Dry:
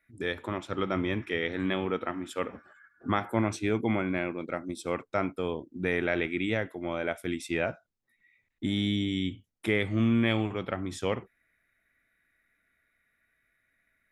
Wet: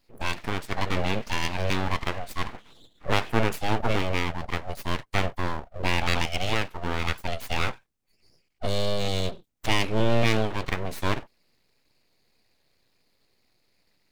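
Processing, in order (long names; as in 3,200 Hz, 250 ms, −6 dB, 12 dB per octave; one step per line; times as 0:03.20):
formants moved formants +3 semitones
full-wave rectification
level +6 dB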